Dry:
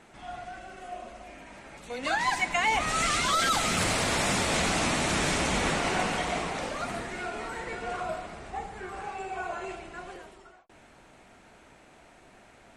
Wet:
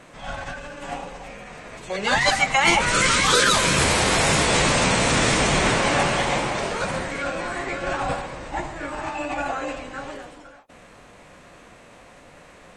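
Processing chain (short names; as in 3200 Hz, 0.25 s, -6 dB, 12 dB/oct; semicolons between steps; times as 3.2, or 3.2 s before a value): formant-preserving pitch shift -4.5 st; gain +8.5 dB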